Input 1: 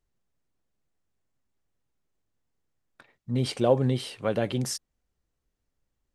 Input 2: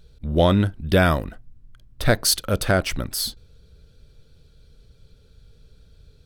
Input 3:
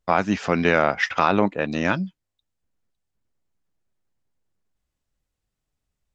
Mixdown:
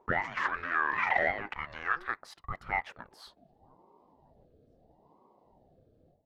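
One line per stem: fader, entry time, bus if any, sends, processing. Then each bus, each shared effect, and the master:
-20.0 dB, 0.00 s, no bus, no send, bass shelf 490 Hz -9.5 dB; comb of notches 150 Hz
-5.5 dB, 0.00 s, bus A, no send, level rider gain up to 11 dB
+2.5 dB, 0.00 s, bus A, no send, waveshaping leveller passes 2; swell ahead of each attack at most 40 dB/s
bus A: 0.0 dB, level rider gain up to 8 dB; peak limiter -7.5 dBFS, peak gain reduction 6.5 dB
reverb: none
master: auto-wah 240–1400 Hz, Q 6, up, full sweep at -15 dBFS; ring modulator with a swept carrier 420 Hz, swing 60%, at 0.76 Hz

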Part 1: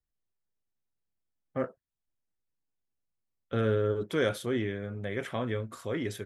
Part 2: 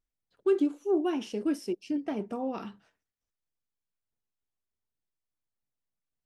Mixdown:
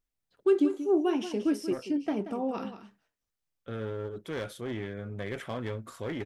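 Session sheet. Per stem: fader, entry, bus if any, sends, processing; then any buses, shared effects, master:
-4.0 dB, 0.15 s, no send, no echo send, gain riding 0.5 s; one-sided clip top -31 dBFS, bottom -20 dBFS
+1.5 dB, 0.00 s, no send, echo send -11.5 dB, none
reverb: none
echo: delay 182 ms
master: none

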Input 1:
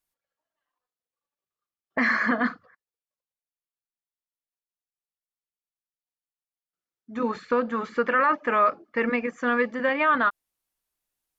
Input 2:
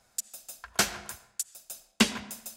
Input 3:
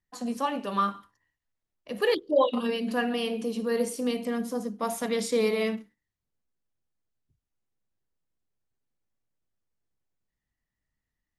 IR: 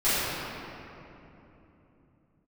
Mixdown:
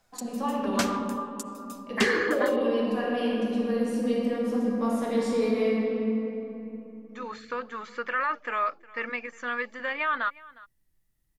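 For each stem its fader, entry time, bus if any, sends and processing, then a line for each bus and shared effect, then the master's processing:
-7.0 dB, 0.00 s, no send, echo send -21.5 dB, tilt EQ +4 dB/octave
-2.5 dB, 0.00 s, no send, no echo send, none
-6.5 dB, 0.00 s, send -10 dB, no echo send, hum notches 50/100/150/200/250 Hz; compression 2:1, threshold -30 dBFS, peak gain reduction 7.5 dB; bass shelf 420 Hz +8 dB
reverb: on, RT60 3.2 s, pre-delay 5 ms
echo: delay 359 ms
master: treble shelf 6.4 kHz -8 dB

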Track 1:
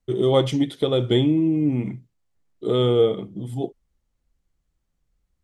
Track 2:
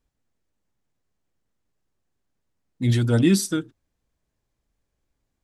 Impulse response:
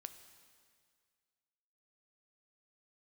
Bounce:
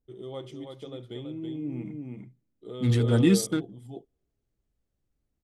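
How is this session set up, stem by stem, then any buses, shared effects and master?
1.21 s -21 dB -> 1.84 s -9.5 dB, 0.00 s, send -19 dB, echo send -5 dB, high-pass 59 Hz; auto duck -11 dB, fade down 1.25 s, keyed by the second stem
-2.5 dB, 0.00 s, no send, no echo send, local Wiener filter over 41 samples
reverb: on, RT60 2.0 s, pre-delay 3 ms
echo: delay 327 ms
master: none

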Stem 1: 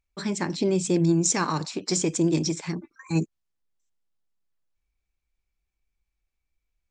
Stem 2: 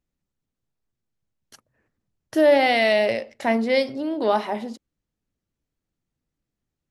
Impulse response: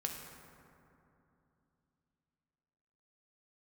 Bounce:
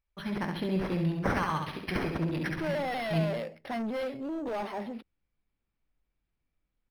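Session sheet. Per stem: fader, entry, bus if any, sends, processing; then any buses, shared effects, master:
-4.0 dB, 0.00 s, no send, echo send -4.5 dB, peaking EQ 340 Hz -9 dB 0.92 oct
-5.0 dB, 0.25 s, no send, no echo send, saturation -25 dBFS, distortion -6 dB; vibrato with a chosen wave saw down 5.2 Hz, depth 100 cents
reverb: none
echo: feedback delay 68 ms, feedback 46%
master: decimation joined by straight lines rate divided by 6×

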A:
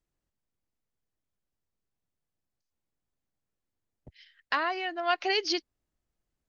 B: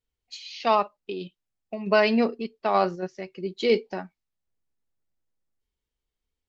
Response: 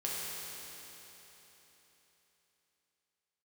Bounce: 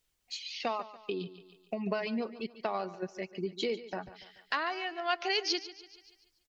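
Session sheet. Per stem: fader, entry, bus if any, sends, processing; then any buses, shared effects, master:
-4.5 dB, 0.00 s, no send, echo send -15 dB, treble shelf 4.1 kHz +6 dB
+0.5 dB, 0.00 s, no send, echo send -15.5 dB, reverb removal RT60 1 s; compression 8:1, threshold -31 dBFS, peak gain reduction 16 dB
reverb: none
echo: feedback delay 144 ms, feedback 41%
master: tape noise reduction on one side only encoder only

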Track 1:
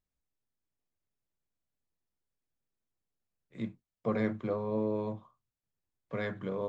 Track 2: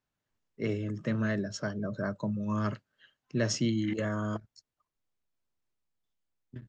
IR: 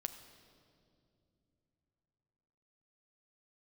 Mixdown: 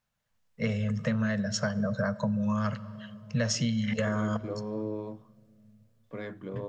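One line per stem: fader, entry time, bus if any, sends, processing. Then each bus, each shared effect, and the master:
-6.0 dB, 0.00 s, send -23 dB, peaking EQ 310 Hz +7 dB 0.77 oct
+1.5 dB, 0.00 s, send -6 dB, Chebyshev band-stop 230–470 Hz, order 3; level rider gain up to 5 dB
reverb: on, pre-delay 8 ms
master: compression 6:1, threshold -25 dBFS, peak gain reduction 9 dB

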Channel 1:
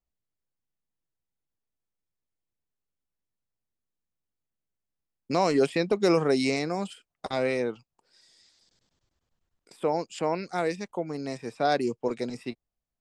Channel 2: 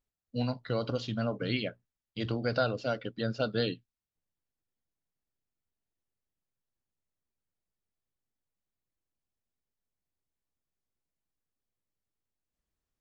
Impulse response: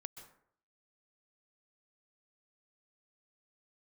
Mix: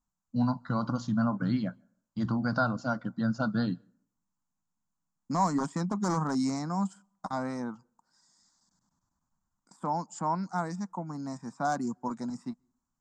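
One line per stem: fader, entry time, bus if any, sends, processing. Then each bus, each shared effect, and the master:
-6.0 dB, 0.00 s, send -23 dB, wavefolder -16 dBFS
-0.5 dB, 0.00 s, send -19 dB, none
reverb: on, RT60 0.65 s, pre-delay 118 ms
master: FFT filter 110 Hz 0 dB, 190 Hz +11 dB, 280 Hz +4 dB, 430 Hz -14 dB, 970 Hz +11 dB, 1.5 kHz +3 dB, 2.6 kHz -21 dB, 7.2 kHz +8 dB, 10 kHz -12 dB

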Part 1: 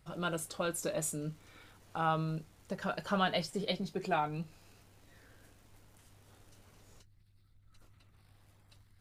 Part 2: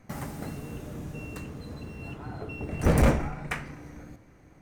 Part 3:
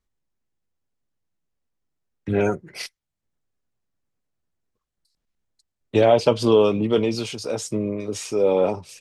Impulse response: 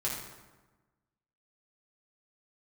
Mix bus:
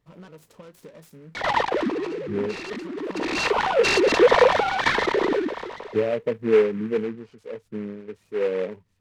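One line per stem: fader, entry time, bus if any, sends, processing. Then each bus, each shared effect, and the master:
-11.0 dB, 0.00 s, no send, compression 10:1, threshold -38 dBFS, peak gain reduction 13 dB; vibrato with a chosen wave saw up 3.6 Hz, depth 160 cents
-3.5 dB, 1.35 s, no send, formants replaced by sine waves; level flattener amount 70%; auto duck -14 dB, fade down 0.65 s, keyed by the third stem
-12.5 dB, 0.00 s, no send, low-pass that closes with the level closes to 590 Hz, closed at -16 dBFS; spectral contrast expander 1.5:1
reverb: none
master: small resonant body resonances 200/440/960/1800 Hz, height 11 dB, ringing for 20 ms; delay time shaken by noise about 1.5 kHz, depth 0.05 ms

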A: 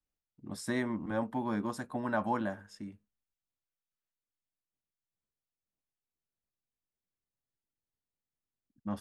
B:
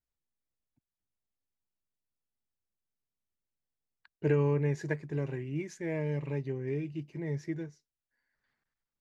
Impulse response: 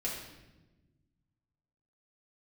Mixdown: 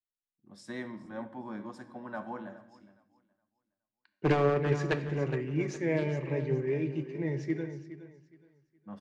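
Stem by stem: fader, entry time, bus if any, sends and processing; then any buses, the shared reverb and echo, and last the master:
-7.0 dB, 0.00 s, send -9 dB, echo send -15 dB, auto duck -15 dB, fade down 2.00 s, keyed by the second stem
+2.0 dB, 0.00 s, send -9.5 dB, echo send -8.5 dB, one-sided wavefolder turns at -24.5 dBFS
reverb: on, RT60 1.1 s, pre-delay 4 ms
echo: feedback delay 417 ms, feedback 40%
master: low-pass 5.8 kHz 12 dB/octave; bass shelf 74 Hz -10 dB; three bands expanded up and down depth 40%

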